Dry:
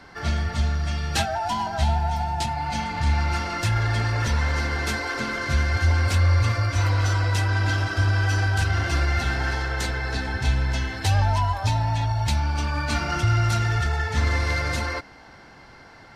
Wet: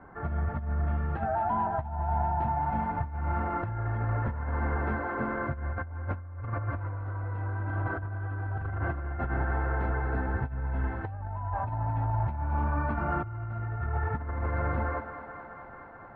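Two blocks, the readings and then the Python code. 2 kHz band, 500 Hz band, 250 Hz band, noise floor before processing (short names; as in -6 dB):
-11.5 dB, -3.5 dB, -4.5 dB, -47 dBFS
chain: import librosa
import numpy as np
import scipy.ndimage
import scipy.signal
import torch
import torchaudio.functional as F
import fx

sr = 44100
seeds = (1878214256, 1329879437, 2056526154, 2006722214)

y = fx.echo_thinned(x, sr, ms=216, feedback_pct=80, hz=200.0, wet_db=-11)
y = fx.over_compress(y, sr, threshold_db=-24.0, ratio=-0.5)
y = scipy.signal.sosfilt(scipy.signal.butter(4, 1400.0, 'lowpass', fs=sr, output='sos'), y)
y = y * librosa.db_to_amplitude(-4.5)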